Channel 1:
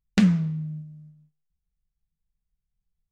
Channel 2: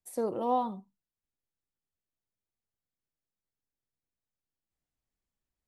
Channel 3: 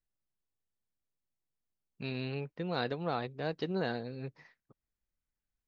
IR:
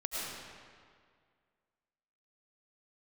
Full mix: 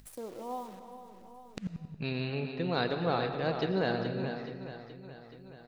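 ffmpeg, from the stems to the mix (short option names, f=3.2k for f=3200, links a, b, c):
-filter_complex "[0:a]aeval=exprs='val(0)*pow(10,-28*if(lt(mod(-11*n/s,1),2*abs(-11)/1000),1-mod(-11*n/s,1)/(2*abs(-11)/1000),(mod(-11*n/s,1)-2*abs(-11)/1000)/(1-2*abs(-11)/1000))/20)':c=same,adelay=1400,volume=-9dB,asplit=2[a][b];[b]volume=-22.5dB[c];[1:a]acrusher=bits=8:dc=4:mix=0:aa=0.000001,aeval=exprs='val(0)+0.000501*(sin(2*PI*50*n/s)+sin(2*PI*2*50*n/s)/2+sin(2*PI*3*50*n/s)/3+sin(2*PI*4*50*n/s)/4+sin(2*PI*5*50*n/s)/5)':c=same,volume=-12dB,asplit=4[d][e][f][g];[e]volume=-12.5dB[h];[f]volume=-13.5dB[i];[2:a]volume=1dB,asplit=3[j][k][l];[k]volume=-8.5dB[m];[l]volume=-6.5dB[n];[g]apad=whole_len=199090[o];[a][o]sidechaincompress=threshold=-57dB:ratio=8:attack=16:release=925[p];[3:a]atrim=start_sample=2205[q];[c][h][m]amix=inputs=3:normalize=0[r];[r][q]afir=irnorm=-1:irlink=0[s];[i][n]amix=inputs=2:normalize=0,aecho=0:1:425|850|1275|1700|2125|2550|2975:1|0.48|0.23|0.111|0.0531|0.0255|0.0122[t];[p][d][j][s][t]amix=inputs=5:normalize=0,acompressor=mode=upward:threshold=-42dB:ratio=2.5"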